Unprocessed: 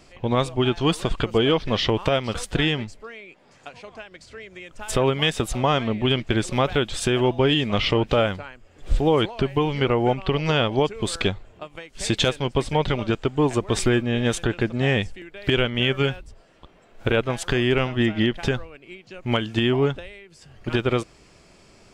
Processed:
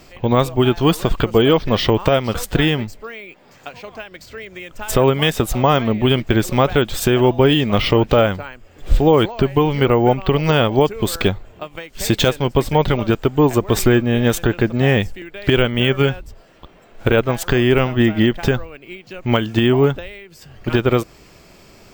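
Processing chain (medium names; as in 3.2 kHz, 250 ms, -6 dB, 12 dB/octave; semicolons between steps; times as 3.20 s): dynamic bell 3.1 kHz, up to -4 dB, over -38 dBFS, Q 0.85; careless resampling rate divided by 2×, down none, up hold; trim +6.5 dB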